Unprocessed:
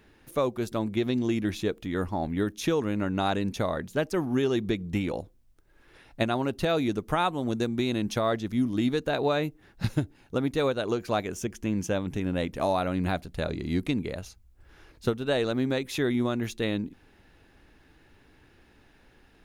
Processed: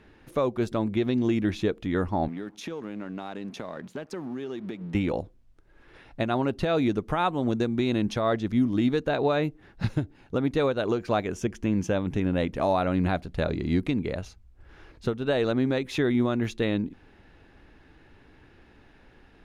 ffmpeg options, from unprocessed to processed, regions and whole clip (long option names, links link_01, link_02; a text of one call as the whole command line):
ffmpeg -i in.wav -filter_complex "[0:a]asettb=1/sr,asplit=3[link_01][link_02][link_03];[link_01]atrim=end=2.284[link_04];[link_02]atrim=start=2.28:end=4.95,asetpts=PTS-STARTPTS,afade=type=in:duration=0.004:curve=qsin,afade=type=out:start_time=2.666:duration=0.004:curve=qsin,highpass=frequency=150:width=0.5412,highpass=frequency=150:width=1.3066,acompressor=threshold=-35dB:ratio=6:attack=3.2:release=140:knee=1:detection=peak,aeval=exprs='sgn(val(0))*max(abs(val(0))-0.00141,0)':channel_layout=same[link_05];[link_03]atrim=start=4.946[link_06];[link_04][link_05]acrossfade=duration=0.004:curve1=hsin:curve2=qsin[link_07];[link_07][link_06]acrossfade=duration=0.004:curve1=qsin:curve2=hsin,aemphasis=mode=reproduction:type=50fm,alimiter=limit=-17.5dB:level=0:latency=1:release=212,volume=3.5dB" out.wav